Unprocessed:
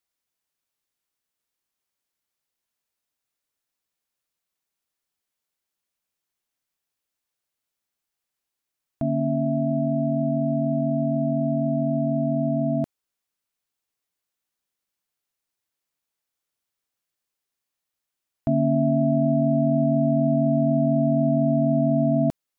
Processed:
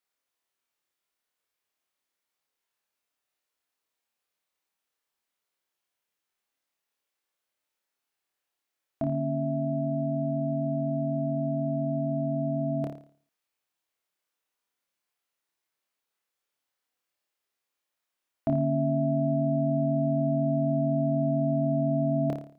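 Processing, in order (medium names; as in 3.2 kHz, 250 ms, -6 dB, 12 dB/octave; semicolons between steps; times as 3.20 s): tone controls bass -9 dB, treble -5 dB; on a send: flutter echo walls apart 4.8 m, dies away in 0.47 s; on the sum: endings held to a fixed fall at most 340 dB/s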